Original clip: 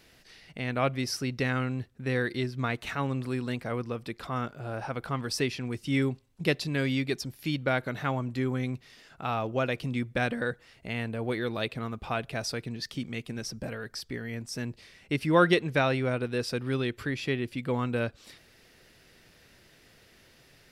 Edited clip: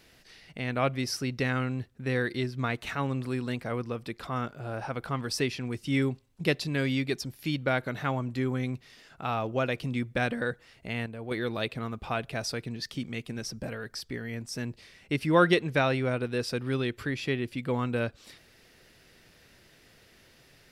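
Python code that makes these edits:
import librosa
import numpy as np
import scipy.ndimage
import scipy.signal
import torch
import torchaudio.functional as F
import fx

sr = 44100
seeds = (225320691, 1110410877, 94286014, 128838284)

y = fx.edit(x, sr, fx.clip_gain(start_s=11.06, length_s=0.25, db=-6.5), tone=tone)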